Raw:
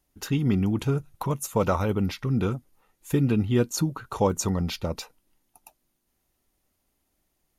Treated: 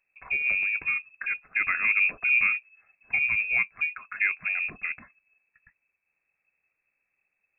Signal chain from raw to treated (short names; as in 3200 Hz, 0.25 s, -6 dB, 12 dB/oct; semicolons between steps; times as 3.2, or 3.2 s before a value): inverted band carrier 2600 Hz; 1.84–3.11 high shelf 2000 Hz +9 dB; gain -3.5 dB